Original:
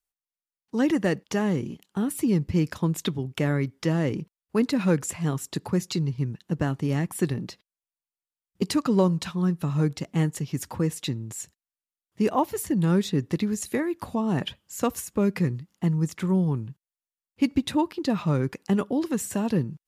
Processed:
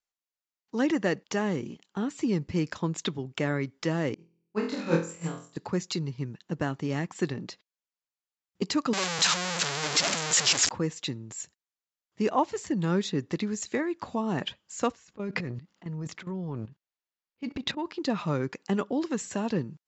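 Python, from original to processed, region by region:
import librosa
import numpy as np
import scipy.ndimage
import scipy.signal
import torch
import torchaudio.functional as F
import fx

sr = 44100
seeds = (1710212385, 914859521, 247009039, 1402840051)

y = fx.chain(x, sr, fx.room_flutter(wall_m=4.1, rt60_s=0.82),
    fx.upward_expand(threshold_db=-33.0, expansion=2.5), at=(4.14, 5.57))
y = fx.chain(y, sr, fx.clip_1bit(),
    fx.tilt_eq(slope=3.0), at=(8.93, 10.69))
y = fx.chain(y, sr, fx.lowpass(hz=5000.0, slope=12),
    fx.transient(attack_db=-10, sustain_db=9),
    fx.level_steps(step_db=14), at=(14.92, 17.86))
y = scipy.signal.sosfilt(scipy.signal.cheby1(8, 1.0, 7500.0, 'lowpass', fs=sr, output='sos'), y)
y = fx.low_shelf(y, sr, hz=150.0, db=-11.5)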